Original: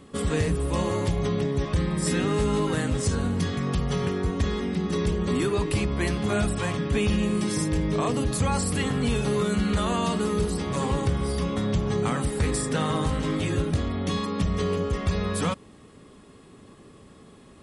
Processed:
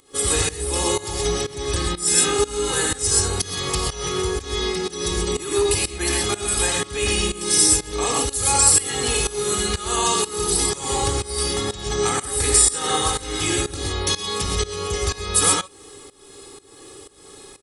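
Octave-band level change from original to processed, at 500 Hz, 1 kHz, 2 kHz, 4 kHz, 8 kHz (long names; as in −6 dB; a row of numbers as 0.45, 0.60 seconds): +3.5, +5.5, +5.5, +12.0, +18.0 decibels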